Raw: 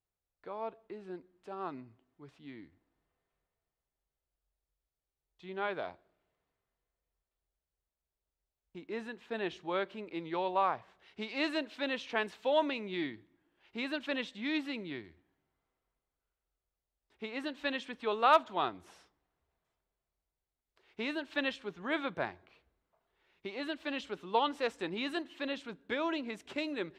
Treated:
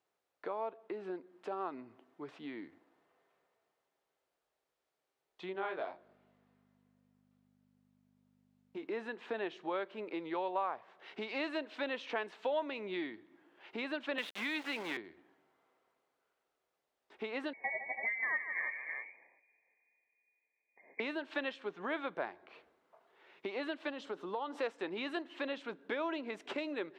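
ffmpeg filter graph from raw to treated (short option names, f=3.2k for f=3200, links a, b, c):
-filter_complex "[0:a]asettb=1/sr,asplit=3[a][b][c];[a]atrim=end=5.534[d];[b]atrim=start=5.53:end=8.85,asetpts=PTS-STARTPTS,afade=t=in:d=0.004:c=qsin,afade=t=out:st=3.316:d=0.004:c=qsin,flanger=delay=19:depth=3.6:speed=2.5,aeval=exprs='val(0)+0.000447*(sin(2*PI*50*n/s)+sin(2*PI*2*50*n/s)/2+sin(2*PI*3*50*n/s)/3+sin(2*PI*4*50*n/s)/4+sin(2*PI*5*50*n/s)/5)':c=same[e];[c]atrim=start=8.846[f];[d][e]acrossfade=d=0.004:c1=hsin:c2=qsin[g];[g][f]acrossfade=d=0.004:c1=qsin:c2=hsin,asettb=1/sr,asplit=3[h][i][j];[h]atrim=end=14.184[k];[i]atrim=start=14.18:end=14.97,asetpts=PTS-STARTPTS,afade=t=in:d=0.004:c=qsin,afade=t=out:st=0.786:d=0.004:c=qsin,equalizer=f=1.5k:t=o:w=2.9:g=14,acrossover=split=260|3000[l][m][n];[m]acompressor=threshold=-38dB:ratio=2.5:attack=3.2:release=140:knee=2.83:detection=peak[o];[l][o][n]amix=inputs=3:normalize=0,aeval=exprs='val(0)*gte(abs(val(0)),0.0112)':c=same[p];[j]atrim=start=14.966[q];[k][p]acrossfade=d=0.004:c1=hsin:c2=qsin[r];[r][q]acrossfade=d=0.004:c1=qsin:c2=hsin,asettb=1/sr,asplit=3[s][t][u];[s]atrim=end=17.534[v];[t]atrim=start=17.53:end=21,asetpts=PTS-STARTPTS,afade=t=in:d=0.004:c=qsin,afade=t=out:st=3.466:d=0.004:c=qsin,asuperstop=centerf=1100:order=4:qfactor=1,aecho=1:1:45|154|256|326:0.133|0.266|0.15|0.266,atrim=end_sample=153027,lowpass=f=2.1k:t=q:w=0.5098,lowpass=f=2.1k:t=q:w=0.6013,lowpass=f=2.1k:t=q:w=0.9,lowpass=f=2.1k:t=q:w=2.563,afreqshift=-2500[w];[u]atrim=start=20.996[x];[v][w]acrossfade=d=0.004:c1=hsin:c2=qsin[y];[y][x]acrossfade=d=0.004:c1=qsin:c2=hsin,asettb=1/sr,asplit=3[z][aa][ab];[z]atrim=end=23.904[ac];[aa]atrim=start=23.9:end=24.58,asetpts=PTS-STARTPTS,afade=t=in:d=0.004:c=qsin,afade=t=out:st=0.676:d=0.004:c=qsin,equalizer=f=2.4k:t=o:w=0.91:g=-8.5,acompressor=threshold=-40dB:ratio=2.5:attack=3.2:release=140:knee=1:detection=peak[ad];[ab]atrim=start=24.576[ae];[ac][ad]acrossfade=d=0.004:c1=hsin:c2=qsin[af];[af][ae]acrossfade=d=0.004:c1=qsin:c2=hsin,lowpass=f=2k:p=1,acompressor=threshold=-51dB:ratio=3,highpass=330,volume=13dB"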